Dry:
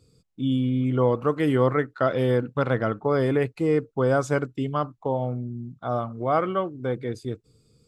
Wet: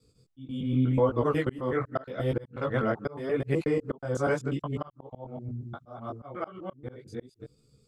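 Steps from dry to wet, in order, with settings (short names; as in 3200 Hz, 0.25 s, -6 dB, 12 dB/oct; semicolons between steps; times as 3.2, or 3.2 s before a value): local time reversal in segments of 0.122 s; chorus voices 2, 0.84 Hz, delay 19 ms, depth 5 ms; auto swell 0.382 s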